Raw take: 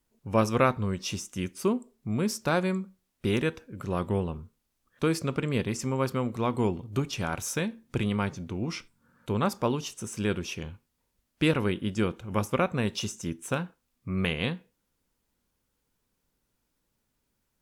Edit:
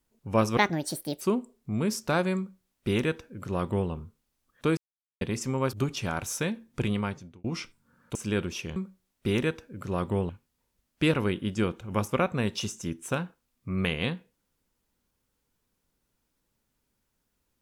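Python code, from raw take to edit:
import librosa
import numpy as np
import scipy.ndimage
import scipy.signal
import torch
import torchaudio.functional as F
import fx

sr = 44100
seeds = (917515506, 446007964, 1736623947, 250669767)

y = fx.edit(x, sr, fx.speed_span(start_s=0.57, length_s=1.02, speed=1.59),
    fx.duplicate(start_s=2.75, length_s=1.53, to_s=10.69),
    fx.silence(start_s=5.15, length_s=0.44),
    fx.cut(start_s=6.11, length_s=0.78),
    fx.fade_out_span(start_s=8.09, length_s=0.51),
    fx.cut(start_s=9.31, length_s=0.77), tone=tone)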